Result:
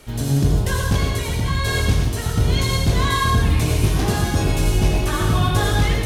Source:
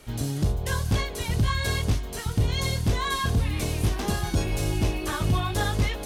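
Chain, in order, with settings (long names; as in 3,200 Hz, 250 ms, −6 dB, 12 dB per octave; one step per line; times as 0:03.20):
0:00.96–0:01.67: downward compressor 2 to 1, threshold −27 dBFS, peak gain reduction 5 dB
convolution reverb RT60 0.90 s, pre-delay 72 ms, DRR 0 dB
level +4 dB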